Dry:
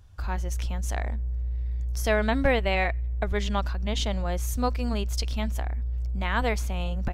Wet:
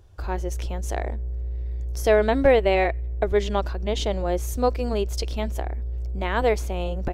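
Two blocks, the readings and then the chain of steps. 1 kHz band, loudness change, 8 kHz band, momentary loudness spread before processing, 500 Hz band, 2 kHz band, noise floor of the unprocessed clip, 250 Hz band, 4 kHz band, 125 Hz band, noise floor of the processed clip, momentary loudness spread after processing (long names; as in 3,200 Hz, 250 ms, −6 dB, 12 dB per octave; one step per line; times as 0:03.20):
+3.5 dB, +3.5 dB, 0.0 dB, 8 LU, +8.5 dB, 0.0 dB, −29 dBFS, +2.0 dB, 0.0 dB, 0.0 dB, −29 dBFS, 13 LU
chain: drawn EQ curve 240 Hz 0 dB, 360 Hz +12 dB, 1,200 Hz 0 dB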